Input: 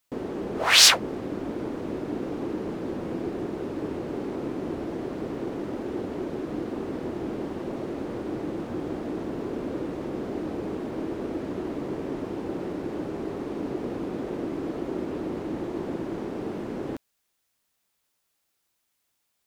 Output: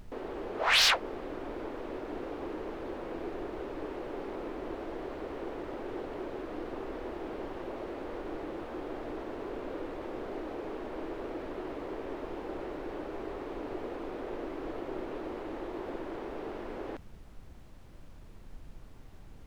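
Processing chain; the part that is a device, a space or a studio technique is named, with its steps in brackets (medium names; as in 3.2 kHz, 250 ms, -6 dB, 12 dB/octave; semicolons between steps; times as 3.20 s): aircraft cabin announcement (band-pass 450–3700 Hz; saturation -15 dBFS, distortion -15 dB; brown noise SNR 10 dB); trim -2 dB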